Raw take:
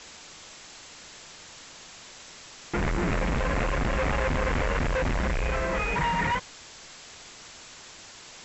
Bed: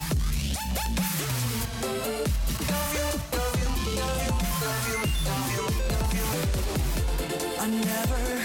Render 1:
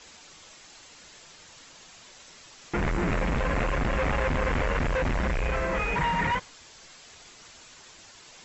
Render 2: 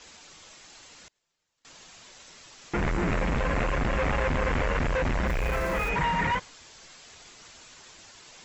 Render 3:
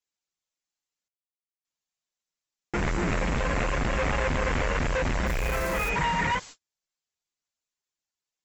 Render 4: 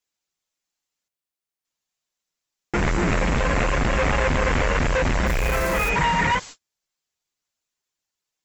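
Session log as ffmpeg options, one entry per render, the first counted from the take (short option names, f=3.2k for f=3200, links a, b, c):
-af "afftdn=nr=6:nf=-47"
-filter_complex "[0:a]asettb=1/sr,asplit=3[a][b][c];[a]atrim=end=1.084[d];[b]atrim=start=1.08:end=1.65,asetpts=PTS-STARTPTS,afade=t=in:d=0.004:c=qsin,afade=t=out:st=0.566:d=0.004:c=qsin,agate=range=-30dB:threshold=-47dB:ratio=16:release=100:detection=peak[e];[c]atrim=start=1.646[f];[d][e]acrossfade=d=0.004:c1=hsin:c2=qsin[g];[g][f]acrossfade=d=0.004:c1=qsin:c2=hsin,asplit=3[h][i][j];[h]afade=t=out:st=5.26:d=0.02[k];[i]aeval=exprs='val(0)*gte(abs(val(0)),0.0133)':c=same,afade=t=in:st=5.26:d=0.02,afade=t=out:st=5.88:d=0.02[l];[j]afade=t=in:st=5.88:d=0.02[m];[k][l][m]amix=inputs=3:normalize=0"
-af "agate=range=-45dB:threshold=-43dB:ratio=16:detection=peak,aemphasis=mode=production:type=cd"
-af "volume=5.5dB"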